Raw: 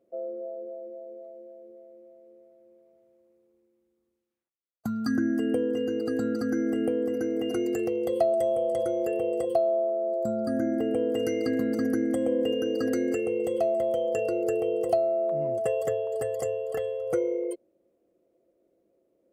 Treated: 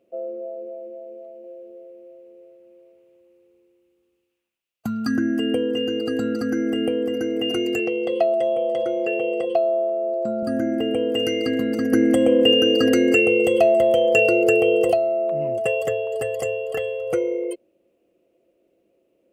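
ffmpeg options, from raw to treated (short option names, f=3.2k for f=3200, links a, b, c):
-filter_complex "[0:a]asettb=1/sr,asplit=3[a][b][c];[a]atrim=end=1.324[d];[b]atrim=start=1.32:end=4.88,asetpts=PTS-STARTPTS,afade=t=in:d=0.004:c=qsin,afade=t=out:st=3.556:d=0.004:c=qsin,aecho=1:1:120:0.596,atrim=end_sample=156996[e];[c]atrim=start=4.876[f];[d][e]acrossfade=d=0.004:c1=hsin:c2=qsin[g];[g][f]acrossfade=d=0.004:c1=qsin:c2=hsin,asettb=1/sr,asplit=3[h][i][j];[h]atrim=end=7.794[k];[i]atrim=start=7.79:end=10.43,asetpts=PTS-STARTPTS,afade=t=in:d=0.004:c=qsin,afade=t=out:st=2.636:d=0.004:c=qsin,highpass=180,lowpass=4.4k[l];[j]atrim=start=10.426[m];[k][l]acrossfade=d=0.004:c1=hsin:c2=qsin[n];[n][m]acrossfade=d=0.004:c1=qsin:c2=hsin,asettb=1/sr,asplit=3[o][p][q];[o]atrim=end=11.924[r];[p]atrim=start=11.92:end=14.92,asetpts=PTS-STARTPTS,afade=t=in:d=0.004:c=qsin,afade=t=out:st=2.996:d=0.004:c=qsin,acontrast=38[s];[q]atrim=start=14.916[t];[r][s]acrossfade=d=0.004:c1=hsin:c2=qsin[u];[u][t]acrossfade=d=0.004:c1=qsin:c2=hsin,equalizer=f=2.7k:w=2.8:g=14,volume=4dB"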